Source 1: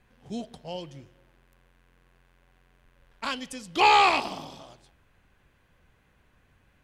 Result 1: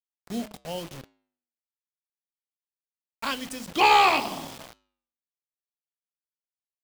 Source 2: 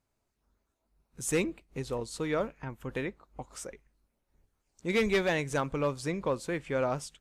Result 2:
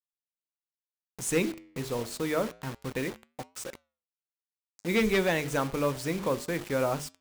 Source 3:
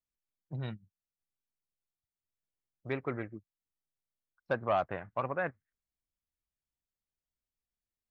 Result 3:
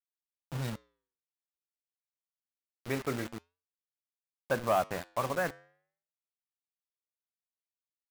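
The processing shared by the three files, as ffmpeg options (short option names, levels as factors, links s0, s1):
-af "bandreject=f=50:t=h:w=6,bandreject=f=100:t=h:w=6,bandreject=f=150:t=h:w=6,bandreject=f=200:t=h:w=6,bandreject=f=250:t=h:w=6,bandreject=f=300:t=h:w=6,bandreject=f=350:t=h:w=6,bandreject=f=400:t=h:w=6,bandreject=f=450:t=h:w=6,acontrast=56,adynamicequalizer=threshold=0.00708:dfrequency=230:dqfactor=1.8:tfrequency=230:tqfactor=1.8:attack=5:release=100:ratio=0.375:range=1.5:mode=boostabove:tftype=bell,acrusher=bits=5:mix=0:aa=0.000001,flanger=delay=5.5:depth=5.9:regen=-89:speed=0.28:shape=triangular"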